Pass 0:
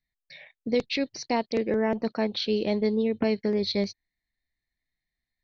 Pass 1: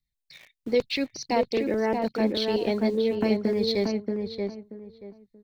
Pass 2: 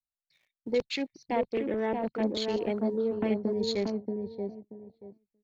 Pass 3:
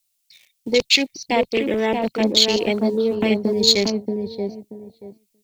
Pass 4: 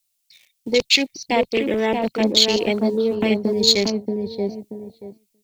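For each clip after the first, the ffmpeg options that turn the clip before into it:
ffmpeg -i in.wav -filter_complex "[0:a]aphaser=in_gain=1:out_gain=1:delay=3.4:decay=0.35:speed=0.88:type=triangular,acrossover=split=270|2300[link_01][link_02][link_03];[link_02]aeval=exprs='val(0)*gte(abs(val(0)),0.00473)':channel_layout=same[link_04];[link_01][link_04][link_03]amix=inputs=3:normalize=0,asplit=2[link_05][link_06];[link_06]adelay=631,lowpass=frequency=1500:poles=1,volume=-3.5dB,asplit=2[link_07][link_08];[link_08]adelay=631,lowpass=frequency=1500:poles=1,volume=0.24,asplit=2[link_09][link_10];[link_10]adelay=631,lowpass=frequency=1500:poles=1,volume=0.24[link_11];[link_05][link_07][link_09][link_11]amix=inputs=4:normalize=0" out.wav
ffmpeg -i in.wav -af "afwtdn=0.0141,volume=-4.5dB" out.wav
ffmpeg -i in.wav -af "aexciter=amount=2.5:drive=8.7:freq=2300,volume=9dB" out.wav
ffmpeg -i in.wav -af "dynaudnorm=framelen=220:gausssize=7:maxgain=8dB,volume=-1dB" out.wav

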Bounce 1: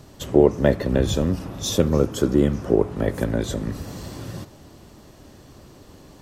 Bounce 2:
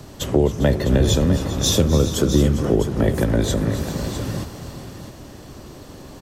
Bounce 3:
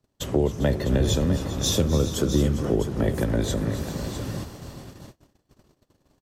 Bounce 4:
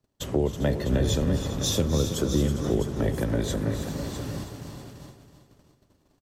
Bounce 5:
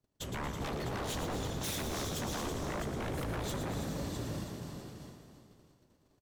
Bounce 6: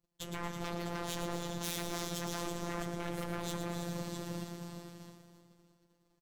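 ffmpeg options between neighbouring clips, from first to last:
ffmpeg -i in.wav -filter_complex "[0:a]acrossover=split=150|3000[link_01][link_02][link_03];[link_02]acompressor=threshold=-25dB:ratio=3[link_04];[link_01][link_04][link_03]amix=inputs=3:normalize=0,aecho=1:1:255|279|399|412|655:0.133|0.168|0.178|0.119|0.299,volume=6.5dB" out.wav
ffmpeg -i in.wav -af "agate=range=-31dB:threshold=-35dB:ratio=16:detection=peak,volume=-5dB" out.wav
ffmpeg -i in.wav -af "aecho=1:1:324|648|972|1296:0.316|0.12|0.0457|0.0174,volume=-2.5dB" out.wav
ffmpeg -i in.wav -filter_complex "[0:a]aeval=exprs='0.0473*(abs(mod(val(0)/0.0473+3,4)-2)-1)':channel_layout=same,asplit=8[link_01][link_02][link_03][link_04][link_05][link_06][link_07][link_08];[link_02]adelay=114,afreqshift=32,volume=-7.5dB[link_09];[link_03]adelay=228,afreqshift=64,volume=-12.4dB[link_10];[link_04]adelay=342,afreqshift=96,volume=-17.3dB[link_11];[link_05]adelay=456,afreqshift=128,volume=-22.1dB[link_12];[link_06]adelay=570,afreqshift=160,volume=-27dB[link_13];[link_07]adelay=684,afreqshift=192,volume=-31.9dB[link_14];[link_08]adelay=798,afreqshift=224,volume=-36.8dB[link_15];[link_01][link_09][link_10][link_11][link_12][link_13][link_14][link_15]amix=inputs=8:normalize=0,volume=-6dB" out.wav
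ffmpeg -i in.wav -filter_complex "[0:a]afftfilt=real='hypot(re,im)*cos(PI*b)':imag='0':win_size=1024:overlap=0.75,asplit=2[link_01][link_02];[link_02]aeval=exprs='sgn(val(0))*max(abs(val(0))-0.00422,0)':channel_layout=same,volume=-10dB[link_03];[link_01][link_03]amix=inputs=2:normalize=0" out.wav

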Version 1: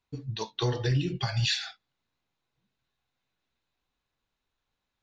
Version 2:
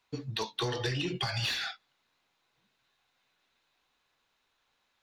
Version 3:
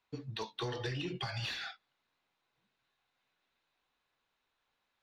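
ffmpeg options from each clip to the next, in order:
ffmpeg -i in.wav -filter_complex "[0:a]asplit=2[link_01][link_02];[link_02]highpass=frequency=720:poles=1,volume=16dB,asoftclip=type=tanh:threshold=-16.5dB[link_03];[link_01][link_03]amix=inputs=2:normalize=0,lowpass=frequency=5900:poles=1,volume=-6dB,acrossover=split=330|2300[link_04][link_05][link_06];[link_04]acompressor=threshold=-34dB:ratio=4[link_07];[link_05]acompressor=threshold=-36dB:ratio=4[link_08];[link_06]acompressor=threshold=-36dB:ratio=4[link_09];[link_07][link_08][link_09]amix=inputs=3:normalize=0" out.wav
ffmpeg -i in.wav -af "lowpass=frequency=3900:poles=1,volume=-5dB" out.wav

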